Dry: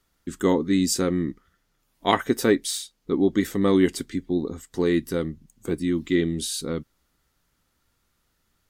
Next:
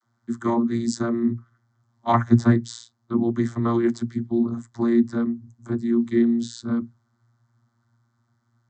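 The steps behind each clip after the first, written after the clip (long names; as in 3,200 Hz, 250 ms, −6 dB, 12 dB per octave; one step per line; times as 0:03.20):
phaser with its sweep stopped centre 1,100 Hz, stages 4
channel vocoder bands 32, saw 117 Hz
level +8 dB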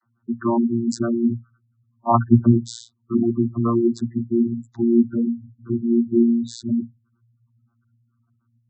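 gate on every frequency bin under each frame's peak −15 dB strong
level +2.5 dB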